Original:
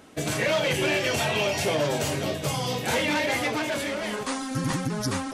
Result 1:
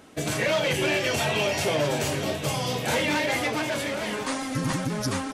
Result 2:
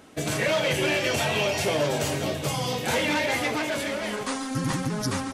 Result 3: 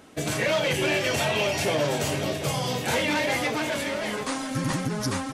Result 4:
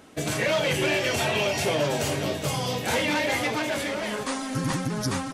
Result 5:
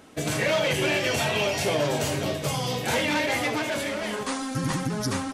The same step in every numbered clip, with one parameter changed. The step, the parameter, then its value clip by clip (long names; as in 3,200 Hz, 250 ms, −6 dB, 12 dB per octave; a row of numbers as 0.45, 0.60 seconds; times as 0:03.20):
repeating echo, delay time: 1,090, 142, 737, 411, 74 milliseconds